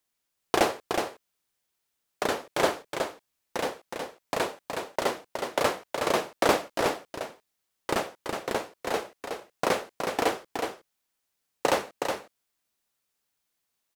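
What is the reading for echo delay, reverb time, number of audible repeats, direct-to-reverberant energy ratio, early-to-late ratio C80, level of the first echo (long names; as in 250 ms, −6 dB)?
368 ms, no reverb audible, 1, no reverb audible, no reverb audible, −5.5 dB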